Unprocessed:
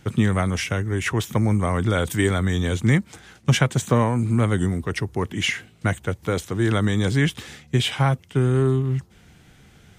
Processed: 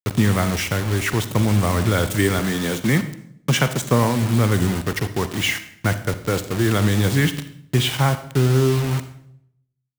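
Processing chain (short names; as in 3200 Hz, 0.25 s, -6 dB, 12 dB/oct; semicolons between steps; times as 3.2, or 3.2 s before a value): 2.39–3.81 HPF 140 Hz 24 dB/oct; bit-crush 5-bit; reverb RT60 0.70 s, pre-delay 39 ms, DRR 11 dB; gain +1.5 dB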